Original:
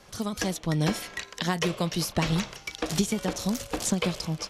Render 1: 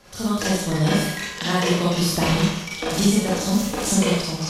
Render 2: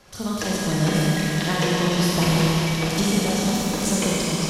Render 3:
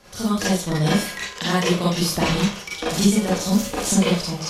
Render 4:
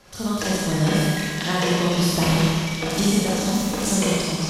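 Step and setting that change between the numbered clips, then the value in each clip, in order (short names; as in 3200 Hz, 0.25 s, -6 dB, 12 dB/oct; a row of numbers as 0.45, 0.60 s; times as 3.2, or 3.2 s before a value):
Schroeder reverb, RT60: 0.76, 4.5, 0.34, 1.9 s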